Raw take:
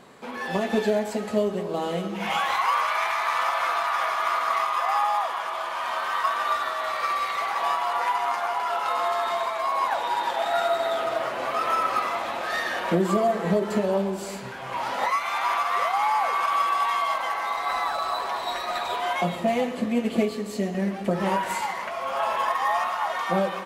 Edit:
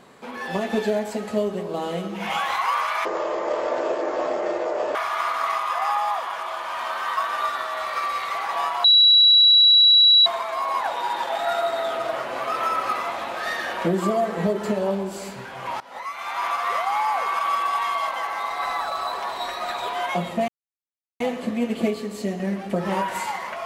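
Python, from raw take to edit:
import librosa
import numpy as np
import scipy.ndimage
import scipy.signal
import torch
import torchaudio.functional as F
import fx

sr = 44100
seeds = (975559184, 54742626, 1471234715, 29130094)

y = fx.edit(x, sr, fx.speed_span(start_s=3.05, length_s=0.97, speed=0.51),
    fx.bleep(start_s=7.91, length_s=1.42, hz=3910.0, db=-10.5),
    fx.fade_in_from(start_s=14.87, length_s=0.75, floor_db=-22.5),
    fx.insert_silence(at_s=19.55, length_s=0.72), tone=tone)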